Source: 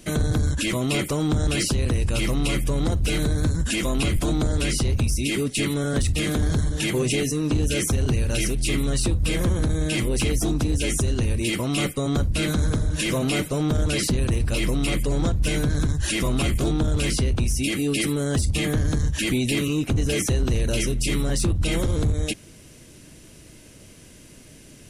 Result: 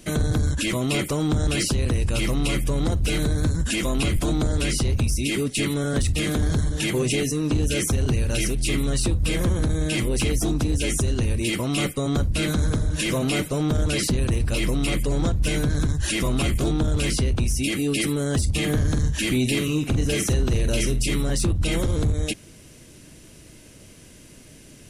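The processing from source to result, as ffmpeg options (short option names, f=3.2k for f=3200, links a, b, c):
-filter_complex "[0:a]asettb=1/sr,asplit=3[a][b][c];[a]atrim=end=18.584[d];[b]atrim=start=18.58:end=21.03,asetpts=PTS-STARTPTS,afade=t=in:d=0.004:c=qsin,afade=t=out:st=2.446:d=0.004:c=qsin,asplit=2[e][f];[f]adelay=47,volume=-10.5dB[g];[e][g]amix=inputs=2:normalize=0,atrim=end_sample=108045[h];[c]atrim=start=21.026[i];[d][h]acrossfade=d=0.004:c1=hsin:c2=qsin[j];[j][i]acrossfade=d=0.004:c1=qsin:c2=hsin"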